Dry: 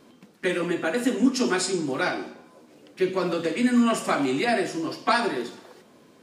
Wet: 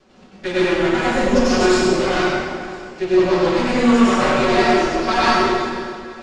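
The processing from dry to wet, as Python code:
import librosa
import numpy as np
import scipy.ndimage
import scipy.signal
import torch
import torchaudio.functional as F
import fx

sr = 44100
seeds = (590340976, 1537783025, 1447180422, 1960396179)

p1 = fx.lower_of_two(x, sr, delay_ms=5.3)
p2 = scipy.signal.sosfilt(scipy.signal.butter(4, 6900.0, 'lowpass', fs=sr, output='sos'), p1)
p3 = p2 + fx.echo_feedback(p2, sr, ms=502, feedback_pct=54, wet_db=-20, dry=0)
y = fx.rev_plate(p3, sr, seeds[0], rt60_s=1.9, hf_ratio=0.7, predelay_ms=80, drr_db=-9.0)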